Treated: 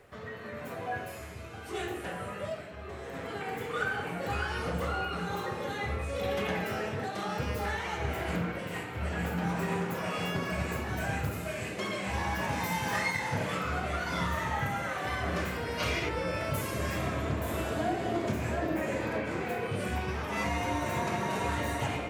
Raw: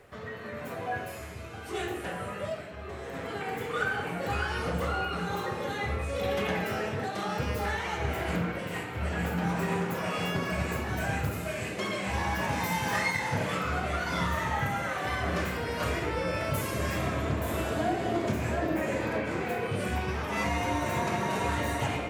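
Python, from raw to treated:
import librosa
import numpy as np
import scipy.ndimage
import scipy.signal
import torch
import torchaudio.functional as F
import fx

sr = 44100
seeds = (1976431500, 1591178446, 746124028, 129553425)

y = fx.spec_box(x, sr, start_s=15.78, length_s=0.3, low_hz=2000.0, high_hz=6600.0, gain_db=7)
y = y * librosa.db_to_amplitude(-2.0)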